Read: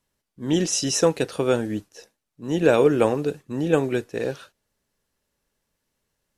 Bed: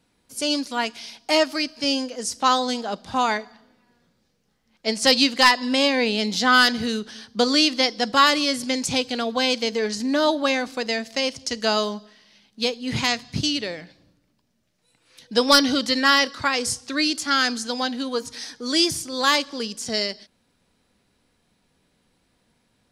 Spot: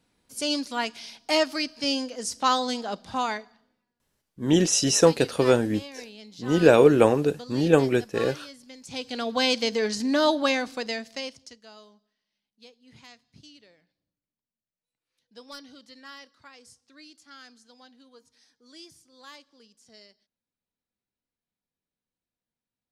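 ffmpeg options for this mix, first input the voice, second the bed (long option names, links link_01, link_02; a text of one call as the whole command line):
ffmpeg -i stem1.wav -i stem2.wav -filter_complex "[0:a]adelay=4000,volume=1.5dB[link_01];[1:a]volume=17dB,afade=type=out:start_time=2.96:duration=0.97:silence=0.11885,afade=type=in:start_time=8.83:duration=0.58:silence=0.0944061,afade=type=out:start_time=10.43:duration=1.17:silence=0.0501187[link_02];[link_01][link_02]amix=inputs=2:normalize=0" out.wav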